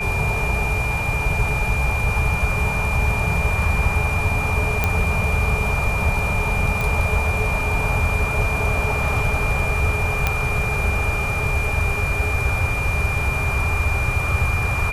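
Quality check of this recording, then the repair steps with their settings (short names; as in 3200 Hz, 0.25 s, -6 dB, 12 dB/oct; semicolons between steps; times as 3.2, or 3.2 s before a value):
tone 2400 Hz -24 dBFS
4.84 pop -5 dBFS
6.81 pop
10.27 pop -4 dBFS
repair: de-click; notch 2400 Hz, Q 30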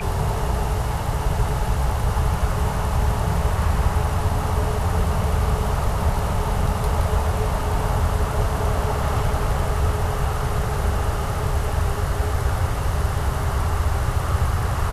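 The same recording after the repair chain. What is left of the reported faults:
none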